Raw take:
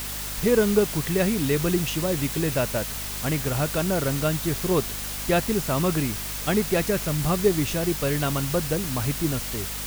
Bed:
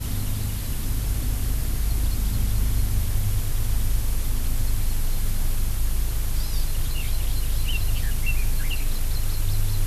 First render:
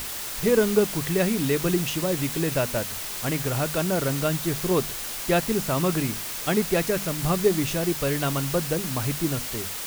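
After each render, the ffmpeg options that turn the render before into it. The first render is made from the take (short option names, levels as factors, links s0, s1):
-af "bandreject=f=50:t=h:w=6,bandreject=f=100:t=h:w=6,bandreject=f=150:t=h:w=6,bandreject=f=200:t=h:w=6,bandreject=f=250:t=h:w=6"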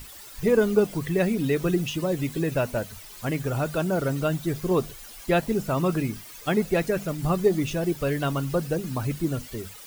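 -af "afftdn=nr=14:nf=-33"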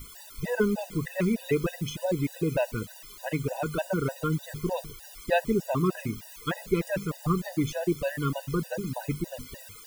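-af "afftfilt=real='re*gt(sin(2*PI*3.3*pts/sr)*(1-2*mod(floor(b*sr/1024/500),2)),0)':imag='im*gt(sin(2*PI*3.3*pts/sr)*(1-2*mod(floor(b*sr/1024/500),2)),0)':win_size=1024:overlap=0.75"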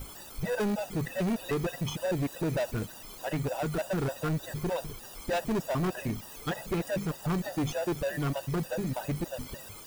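-filter_complex "[0:a]asplit=2[s0][s1];[s1]acrusher=samples=21:mix=1:aa=0.000001,volume=0.473[s2];[s0][s2]amix=inputs=2:normalize=0,asoftclip=type=tanh:threshold=0.0531"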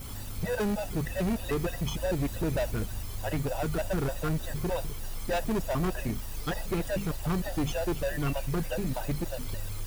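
-filter_complex "[1:a]volume=0.211[s0];[0:a][s0]amix=inputs=2:normalize=0"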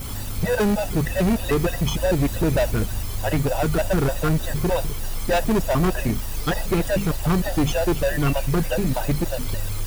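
-af "volume=2.82"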